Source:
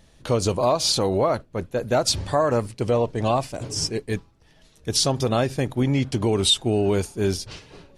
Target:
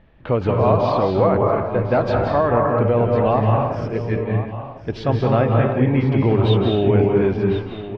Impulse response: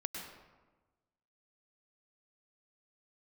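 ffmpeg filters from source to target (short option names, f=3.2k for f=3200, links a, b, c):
-filter_complex "[0:a]lowpass=f=2.5k:w=0.5412,lowpass=f=2.5k:w=1.3066,aecho=1:1:1051:0.224[a];[1:a]atrim=start_sample=2205,afade=t=out:st=0.27:d=0.01,atrim=end_sample=12348,asetrate=26460,aresample=44100[b];[a][b]afir=irnorm=-1:irlink=0,volume=2dB"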